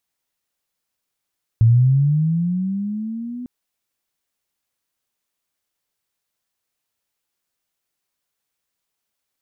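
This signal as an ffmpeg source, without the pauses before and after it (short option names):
-f lavfi -i "aevalsrc='pow(10,(-8.5-19*t/1.85)/20)*sin(2*PI*(110*t+140*t*t/(2*1.85)))':d=1.85:s=44100"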